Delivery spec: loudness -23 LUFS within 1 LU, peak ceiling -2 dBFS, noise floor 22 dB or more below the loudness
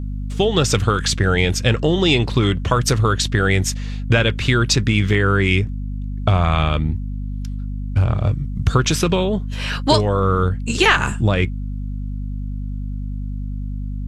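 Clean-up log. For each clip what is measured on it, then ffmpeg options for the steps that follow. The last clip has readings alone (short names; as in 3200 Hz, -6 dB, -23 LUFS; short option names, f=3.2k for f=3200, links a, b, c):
hum 50 Hz; harmonics up to 250 Hz; hum level -23 dBFS; loudness -19.0 LUFS; peak -2.0 dBFS; loudness target -23.0 LUFS
-> -af "bandreject=f=50:t=h:w=4,bandreject=f=100:t=h:w=4,bandreject=f=150:t=h:w=4,bandreject=f=200:t=h:w=4,bandreject=f=250:t=h:w=4"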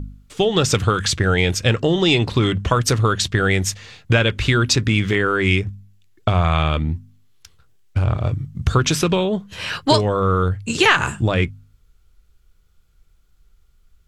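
hum none; loudness -19.0 LUFS; peak -2.5 dBFS; loudness target -23.0 LUFS
-> -af "volume=-4dB"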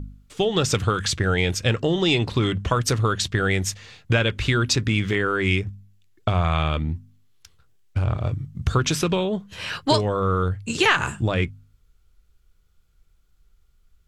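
loudness -23.0 LUFS; peak -6.5 dBFS; noise floor -61 dBFS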